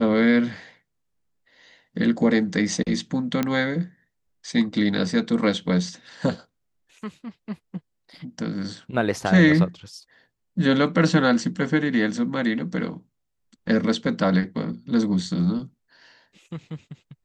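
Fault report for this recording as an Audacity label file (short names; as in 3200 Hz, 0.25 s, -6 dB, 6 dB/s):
3.430000	3.430000	pop -10 dBFS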